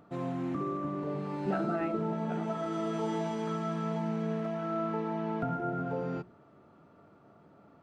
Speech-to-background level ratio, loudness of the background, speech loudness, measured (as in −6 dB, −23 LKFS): −5.0 dB, −34.0 LKFS, −39.0 LKFS